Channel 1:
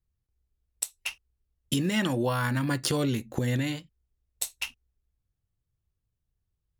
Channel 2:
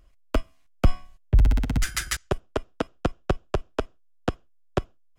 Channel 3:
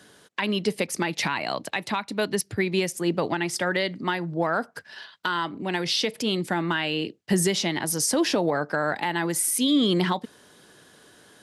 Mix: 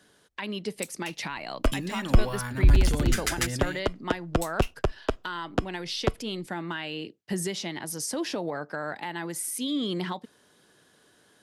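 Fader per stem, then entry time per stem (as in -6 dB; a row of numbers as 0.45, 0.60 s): -6.5, -0.5, -8.0 dB; 0.00, 1.30, 0.00 s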